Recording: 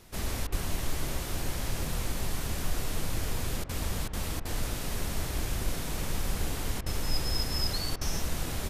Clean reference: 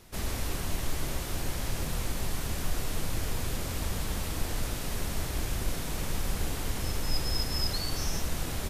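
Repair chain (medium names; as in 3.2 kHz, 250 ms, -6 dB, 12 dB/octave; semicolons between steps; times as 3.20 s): 0.51–0.63 s: high-pass 140 Hz 24 dB/octave; interpolate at 0.47/3.64/4.08/4.40/6.81/7.96 s, 51 ms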